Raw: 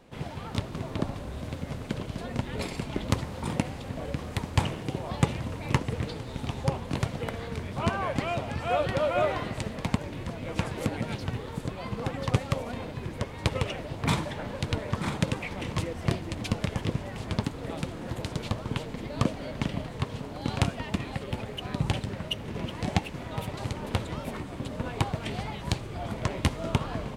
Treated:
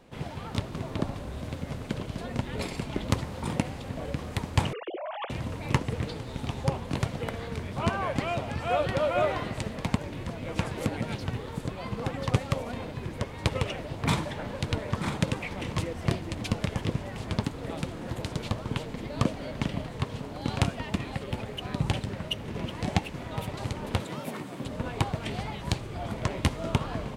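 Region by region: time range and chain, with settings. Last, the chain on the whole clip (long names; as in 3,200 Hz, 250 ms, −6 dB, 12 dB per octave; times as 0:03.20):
0:04.73–0:05.30: three sine waves on the formant tracks + downward compressor 3 to 1, threshold −34 dBFS
0:24.00–0:24.64: high-pass filter 130 Hz 24 dB per octave + high-shelf EQ 11,000 Hz +8.5 dB
whole clip: no processing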